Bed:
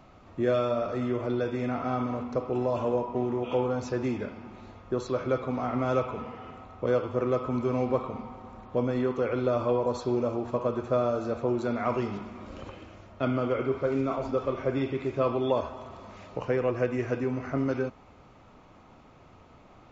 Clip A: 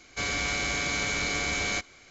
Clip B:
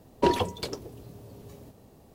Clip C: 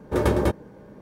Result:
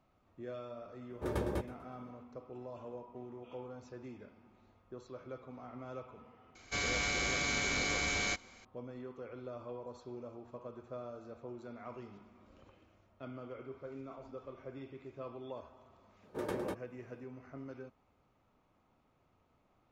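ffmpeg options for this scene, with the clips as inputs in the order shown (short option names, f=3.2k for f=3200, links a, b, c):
-filter_complex "[3:a]asplit=2[a][b];[0:a]volume=-19dB[c];[a]aecho=1:1:123|246|369:0.126|0.0466|0.0172[d];[b]highpass=170[e];[d]atrim=end=1.01,asetpts=PTS-STARTPTS,volume=-14.5dB,afade=t=in:d=0.004:c=hsin,afade=t=out:st=1.006:d=0.004:c=hsin,adelay=1100[f];[1:a]atrim=end=2.1,asetpts=PTS-STARTPTS,volume=-5dB,afade=t=in:d=0.004:c=hsin,afade=t=out:st=2.096:d=0.004:c=hsin,adelay=6550[g];[e]atrim=end=1.01,asetpts=PTS-STARTPTS,volume=-15.5dB,afade=t=in:d=0.004:c=hsin,afade=t=out:st=1.006:d=0.004:c=hsin,adelay=16230[h];[c][f][g][h]amix=inputs=4:normalize=0"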